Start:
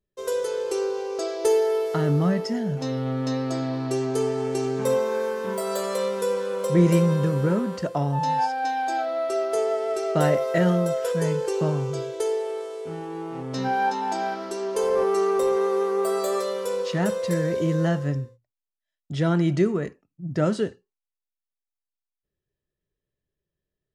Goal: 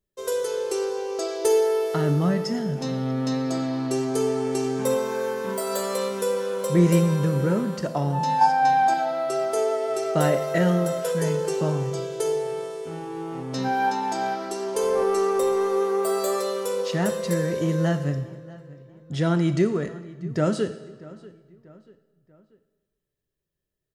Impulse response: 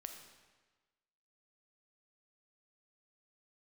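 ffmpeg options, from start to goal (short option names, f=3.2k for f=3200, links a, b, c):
-filter_complex "[0:a]asettb=1/sr,asplit=3[a][b][c];[a]atrim=end=8.414[d];[b]atrim=start=8.41:end=8.94,asetpts=PTS-STARTPTS,afade=t=in:d=0.004:c=qsin,afade=t=out:st=0.526:d=0.004:c=qsin,equalizer=f=1k:w=1.1:g=8.5[e];[c]atrim=start=8.936[f];[d][e]acrossfade=d=0.004:c1=hsin:c2=qsin[g];[g][f]acrossfade=d=0.004:c1=qsin:c2=hsin,asplit=2[h][i];[i]adelay=638,lowpass=f=3.6k:p=1,volume=-20dB,asplit=2[j][k];[k]adelay=638,lowpass=f=3.6k:p=1,volume=0.45,asplit=2[l][m];[m]adelay=638,lowpass=f=3.6k:p=1,volume=0.45[n];[h][j][l][n]amix=inputs=4:normalize=0,asplit=2[o][p];[1:a]atrim=start_sample=2205,highshelf=f=5.3k:g=10.5[q];[p][q]afir=irnorm=-1:irlink=0,volume=1.5dB[r];[o][r]amix=inputs=2:normalize=0,volume=-4.5dB"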